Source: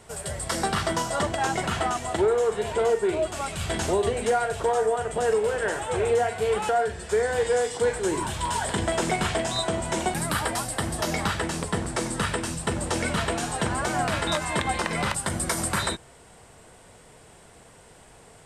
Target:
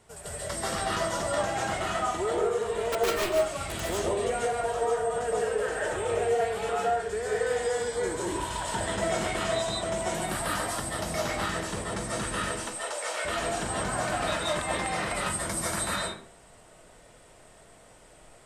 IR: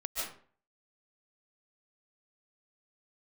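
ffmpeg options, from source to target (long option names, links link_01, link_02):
-filter_complex "[0:a]asettb=1/sr,asplit=3[link_01][link_02][link_03];[link_01]atrim=end=2.924[link_04];[link_02]atrim=start=2.92:end=3.81,asetpts=PTS-STARTPTS,afade=type=in:duration=0.004:curve=qsin,afade=type=out:start_time=0.886:duration=0.004:curve=qsin,aeval=exprs='(mod(7.5*val(0)+1,2)-1)/7.5':channel_layout=same[link_05];[link_03]atrim=start=3.806[link_06];[link_04][link_05]acrossfade=duration=0.004:curve1=hsin:curve2=qsin[link_07];[link_07][link_06]acrossfade=duration=0.004:curve1=qsin:curve2=hsin,asettb=1/sr,asplit=3[link_08][link_09][link_10];[link_08]atrim=end=7.694[link_11];[link_09]atrim=start=7.69:end=8.17,asetpts=PTS-STARTPTS,afade=type=in:duration=0.004:curve=qsin,afade=type=out:start_time=0.476:duration=0.004:curve=qsin,bandreject=frequency=2700:width=7.5[link_12];[link_10]atrim=start=8.166[link_13];[link_11][link_12]acrossfade=duration=0.004:curve1=hsin:curve2=qsin[link_14];[link_14][link_13]acrossfade=duration=0.004:curve1=qsin:curve2=hsin,asettb=1/sr,asplit=3[link_15][link_16][link_17];[link_15]atrim=end=12.514[link_18];[link_16]atrim=start=12.51:end=13.25,asetpts=PTS-STARTPTS,afade=type=in:duration=0.004:curve=qsin,afade=type=out:start_time=0.736:duration=0.004:curve=qsin,highpass=frequency=500:width=0.5412,highpass=frequency=500:width=1.3066[link_19];[link_17]atrim=start=13.246[link_20];[link_18][link_19]acrossfade=duration=0.004:curve1=hsin:curve2=qsin[link_21];[link_21][link_20]acrossfade=duration=0.004:curve1=qsin:curve2=hsin[link_22];[1:a]atrim=start_sample=2205,asetrate=42777,aresample=44100[link_23];[link_22][link_23]afir=irnorm=-1:irlink=0,volume=-6.5dB"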